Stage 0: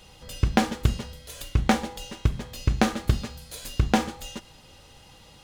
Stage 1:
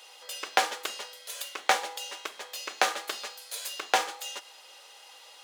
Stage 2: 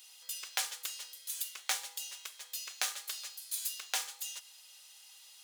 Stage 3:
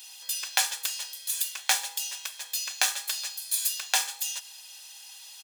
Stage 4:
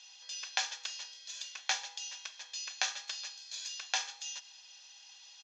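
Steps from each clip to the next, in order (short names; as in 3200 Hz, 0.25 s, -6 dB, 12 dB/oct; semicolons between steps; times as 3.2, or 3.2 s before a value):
Bessel high-pass 730 Hz, order 6; gain +3 dB
differentiator
comb 1.2 ms, depth 44%; gain +8.5 dB
elliptic low-pass 6400 Hz, stop band 40 dB; gain -6.5 dB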